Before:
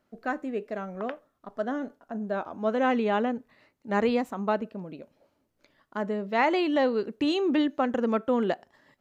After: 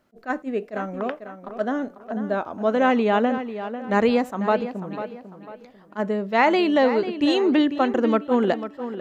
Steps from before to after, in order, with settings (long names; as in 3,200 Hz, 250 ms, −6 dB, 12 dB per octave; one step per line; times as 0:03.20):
tape delay 496 ms, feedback 38%, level −10 dB, low-pass 3,800 Hz
level that may rise only so fast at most 400 dB per second
level +5.5 dB